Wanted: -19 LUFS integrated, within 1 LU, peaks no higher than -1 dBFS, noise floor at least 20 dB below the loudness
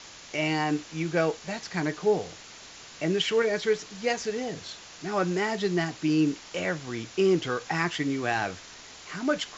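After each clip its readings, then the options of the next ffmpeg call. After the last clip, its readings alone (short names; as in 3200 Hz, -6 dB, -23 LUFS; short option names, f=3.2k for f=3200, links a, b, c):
noise floor -47 dBFS; noise floor target -48 dBFS; loudness -28.0 LUFS; peak -12.0 dBFS; loudness target -19.0 LUFS
-> -af "afftdn=nr=6:nf=-47"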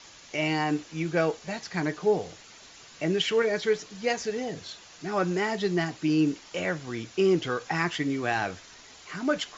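noise floor -50 dBFS; loudness -28.0 LUFS; peak -12.0 dBFS; loudness target -19.0 LUFS
-> -af "volume=9dB"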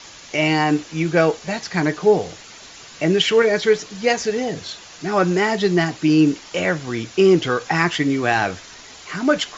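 loudness -19.0 LUFS; peak -3.0 dBFS; noise floor -41 dBFS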